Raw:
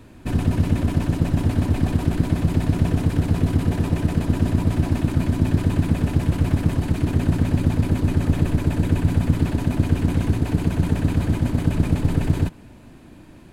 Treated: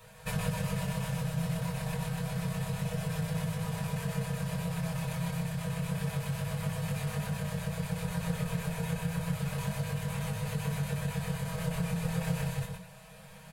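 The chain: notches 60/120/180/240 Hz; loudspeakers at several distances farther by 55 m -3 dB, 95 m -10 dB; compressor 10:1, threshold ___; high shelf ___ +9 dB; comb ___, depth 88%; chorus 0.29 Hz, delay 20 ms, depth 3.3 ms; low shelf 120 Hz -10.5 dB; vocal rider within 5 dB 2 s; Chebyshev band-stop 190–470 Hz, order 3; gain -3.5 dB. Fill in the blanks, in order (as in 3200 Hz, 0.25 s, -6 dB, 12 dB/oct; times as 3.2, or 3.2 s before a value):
-18 dBFS, 8300 Hz, 6.3 ms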